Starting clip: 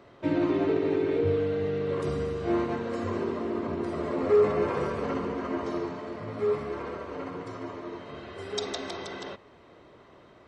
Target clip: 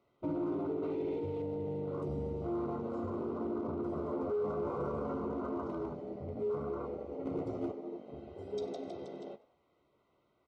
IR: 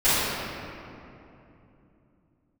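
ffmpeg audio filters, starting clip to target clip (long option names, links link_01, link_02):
-filter_complex "[0:a]afwtdn=0.0224,asettb=1/sr,asplit=3[link_01][link_02][link_03];[link_01]atrim=end=0.834[link_04];[link_02]atrim=start=0.83:end=1.42,asetpts=PTS-STARTPTS,afade=type=in:duration=0.004:curve=qsin,afade=type=out:start_time=0.586:duration=0.004:curve=qsin,equalizer=frequency=3000:width_type=o:width=2.7:gain=11.5[link_05];[link_03]atrim=start=1.416[link_06];[link_04][link_05]acrossfade=duration=0.004:curve1=hsin:curve2=qsin[link_07];[link_07][link_06]acrossfade=duration=0.004:curve1=qsin:curve2=hsin,alimiter=level_in=1.5dB:limit=-24dB:level=0:latency=1:release=22,volume=-1.5dB,asplit=3[link_08][link_09][link_10];[link_08]afade=type=out:start_time=5.67:duration=0.02[link_11];[link_09]afreqshift=-20,afade=type=in:start_time=5.67:duration=0.02,afade=type=out:start_time=6.34:duration=0.02[link_12];[link_10]afade=type=in:start_time=6.34:duration=0.02[link_13];[link_11][link_12][link_13]amix=inputs=3:normalize=0,asettb=1/sr,asplit=3[link_14][link_15][link_16];[link_14]atrim=end=7.254[link_17];[link_15]atrim=start=7.25:end=7.72,asetpts=PTS-STARTPTS,afade=type=in:duration=0.004:curve=qsin,afade=type=out:start_time=0.466:duration=0.004:curve=qsin,acontrast=54[link_18];[link_16]atrim=start=7.716[link_19];[link_17][link_18]acrossfade=duration=0.004:curve1=hsin:curve2=qsin[link_20];[link_20][link_19]acrossfade=duration=0.004:curve1=qsin:curve2=hsin,volume=26dB,asoftclip=hard,volume=-26dB,asuperstop=centerf=1700:order=12:qfactor=4.4,asplit=2[link_21][link_22];[link_22]adelay=14,volume=-11dB[link_23];[link_21][link_23]amix=inputs=2:normalize=0,asplit=4[link_24][link_25][link_26][link_27];[link_25]adelay=97,afreqshift=72,volume=-20dB[link_28];[link_26]adelay=194,afreqshift=144,volume=-28.9dB[link_29];[link_27]adelay=291,afreqshift=216,volume=-37.7dB[link_30];[link_24][link_28][link_29][link_30]amix=inputs=4:normalize=0,volume=-4dB"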